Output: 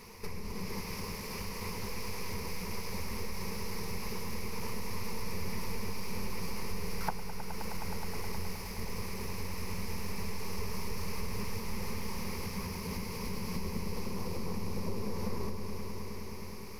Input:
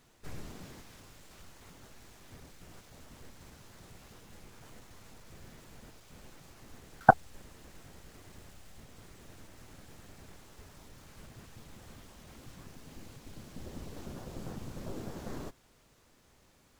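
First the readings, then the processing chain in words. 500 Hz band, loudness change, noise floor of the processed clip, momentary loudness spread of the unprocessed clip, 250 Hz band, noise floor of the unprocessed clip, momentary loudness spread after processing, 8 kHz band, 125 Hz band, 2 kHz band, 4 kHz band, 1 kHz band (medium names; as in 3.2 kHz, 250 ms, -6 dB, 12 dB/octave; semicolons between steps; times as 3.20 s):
+0.5 dB, -5.5 dB, -41 dBFS, 25 LU, +7.0 dB, -65 dBFS, 3 LU, +11.5 dB, +7.0 dB, -2.0 dB, +13.0 dB, -7.0 dB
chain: rippled EQ curve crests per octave 0.85, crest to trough 14 dB; compression 20:1, threshold -46 dBFS, peak gain reduction 33.5 dB; on a send: echo with a slow build-up 105 ms, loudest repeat 5, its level -12 dB; on the sum: trim +12 dB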